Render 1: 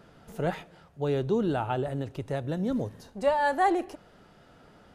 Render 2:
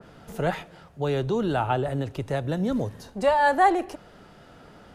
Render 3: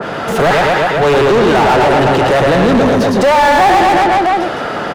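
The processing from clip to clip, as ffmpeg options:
-filter_complex "[0:a]acrossover=split=120|610|3200[a][b][c][d];[b]alimiter=level_in=3dB:limit=-24dB:level=0:latency=1:release=340,volume=-3dB[e];[a][e][c][d]amix=inputs=4:normalize=0,adynamicequalizer=threshold=0.0126:dfrequency=2200:dqfactor=0.7:tfrequency=2200:tqfactor=0.7:attack=5:release=100:ratio=0.375:range=2:mode=cutabove:tftype=highshelf,volume=6dB"
-filter_complex "[0:a]aecho=1:1:110|231|364.1|510.5|671.6:0.631|0.398|0.251|0.158|0.1,asplit=2[a][b];[b]highpass=f=720:p=1,volume=36dB,asoftclip=type=tanh:threshold=-7.5dB[c];[a][c]amix=inputs=2:normalize=0,lowpass=f=1.8k:p=1,volume=-6dB,volume=5dB"

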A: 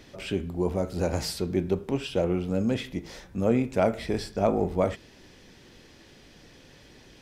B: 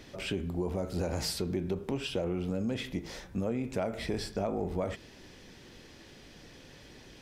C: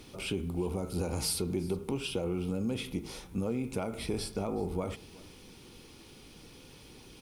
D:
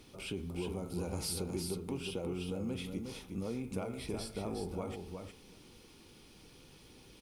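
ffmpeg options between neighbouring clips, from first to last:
-filter_complex "[0:a]asplit=2[a][b];[b]alimiter=limit=-22dB:level=0:latency=1:release=31,volume=2dB[c];[a][c]amix=inputs=2:normalize=0,acompressor=threshold=-21dB:ratio=6,volume=-7dB"
-af "superequalizer=8b=0.501:11b=0.355:16b=3.16,aecho=1:1:371:0.0794,acrusher=bits=10:mix=0:aa=0.000001"
-af "aecho=1:1:361:0.531,volume=-6dB"

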